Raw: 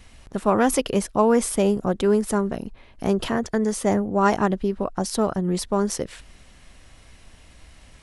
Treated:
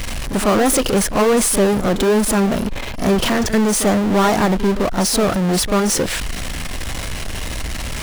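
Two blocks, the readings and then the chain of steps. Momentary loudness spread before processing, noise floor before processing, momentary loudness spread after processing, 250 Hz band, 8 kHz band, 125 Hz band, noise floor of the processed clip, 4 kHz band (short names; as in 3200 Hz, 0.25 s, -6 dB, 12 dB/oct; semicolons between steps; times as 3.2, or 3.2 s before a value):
9 LU, -50 dBFS, 12 LU, +6.0 dB, +11.5 dB, +7.0 dB, -26 dBFS, +12.5 dB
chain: power-law curve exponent 0.35; reverse echo 41 ms -11 dB; gain -3.5 dB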